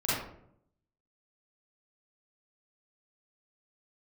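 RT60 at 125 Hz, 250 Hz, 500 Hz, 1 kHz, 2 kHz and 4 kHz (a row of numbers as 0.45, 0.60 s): 1.0, 0.90, 0.80, 0.60, 0.50, 0.35 s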